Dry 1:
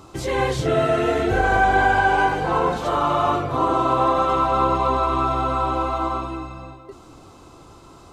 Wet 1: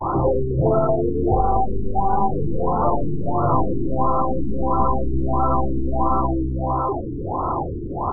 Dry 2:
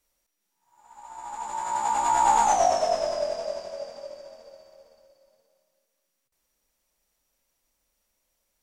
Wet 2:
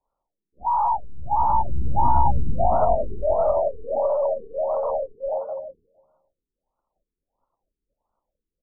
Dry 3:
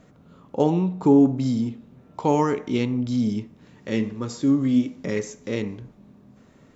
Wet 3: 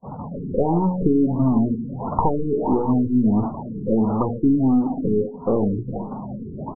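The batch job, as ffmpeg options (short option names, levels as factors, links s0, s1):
-filter_complex "[0:a]aeval=exprs='val(0)+0.5*0.0501*sgn(val(0))':c=same,acompressor=threshold=0.1:ratio=12,equalizer=f=910:t=o:w=1.2:g=12.5,aeval=exprs='(tanh(2.51*val(0)+0.55)-tanh(0.55))/2.51':c=same,bass=f=250:g=3,treble=f=4000:g=-7,bandreject=f=60:t=h:w=6,bandreject=f=120:t=h:w=6,bandreject=f=180:t=h:w=6,bandreject=f=240:t=h:w=6,bandreject=f=300:t=h:w=6,agate=range=0.0141:threshold=0.0355:ratio=16:detection=peak,asplit=2[s0][s1];[s1]aecho=0:1:459:0.133[s2];[s0][s2]amix=inputs=2:normalize=0,afftdn=nr=15:nf=-30,bandreject=f=2100:w=12,acrossover=split=390[s3][s4];[s4]acompressor=threshold=0.0562:ratio=8[s5];[s3][s5]amix=inputs=2:normalize=0,afftfilt=real='re*lt(b*sr/1024,450*pow(1500/450,0.5+0.5*sin(2*PI*1.5*pts/sr)))':imag='im*lt(b*sr/1024,450*pow(1500/450,0.5+0.5*sin(2*PI*1.5*pts/sr)))':win_size=1024:overlap=0.75,volume=2.11"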